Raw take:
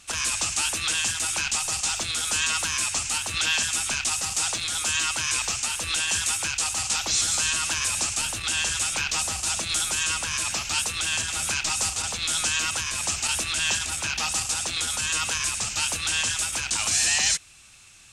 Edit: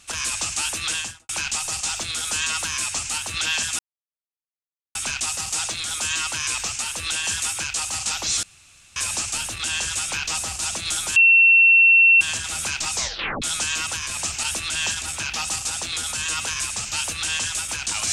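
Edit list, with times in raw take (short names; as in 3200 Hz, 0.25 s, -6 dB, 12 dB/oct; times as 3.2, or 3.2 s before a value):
0.94–1.29 studio fade out
3.79 insert silence 1.16 s
7.27–7.8 room tone
10–11.05 bleep 2710 Hz -10 dBFS
11.77 tape stop 0.49 s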